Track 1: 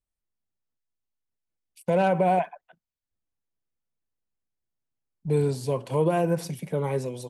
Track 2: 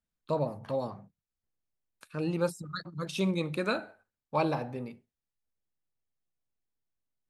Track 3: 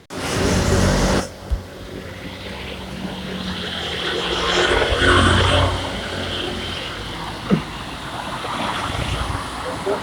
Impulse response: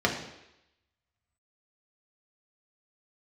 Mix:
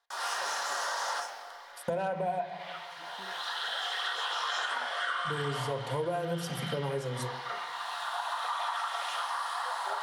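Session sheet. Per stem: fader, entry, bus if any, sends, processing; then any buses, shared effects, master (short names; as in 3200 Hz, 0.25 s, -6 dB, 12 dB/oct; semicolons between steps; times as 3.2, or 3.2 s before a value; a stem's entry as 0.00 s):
+2.5 dB, 0.00 s, send -14 dB, dry
-3.0 dB, 0.00 s, no send, wah 1.2 Hz 240–1400 Hz, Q 7.7
+0.5 dB, 0.00 s, send -13.5 dB, ladder high-pass 730 Hz, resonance 45%; auto duck -17 dB, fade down 0.50 s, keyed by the first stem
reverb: on, RT60 0.85 s, pre-delay 3 ms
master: gate with hold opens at -38 dBFS; bell 320 Hz -9 dB 2 oct; compressor 6:1, threshold -30 dBFS, peak gain reduction 15.5 dB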